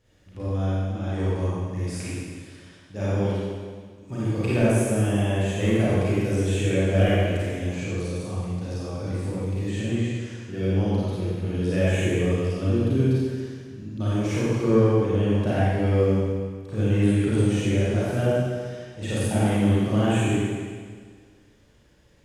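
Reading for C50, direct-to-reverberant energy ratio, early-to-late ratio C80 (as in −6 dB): −5.5 dB, −10.0 dB, −3.0 dB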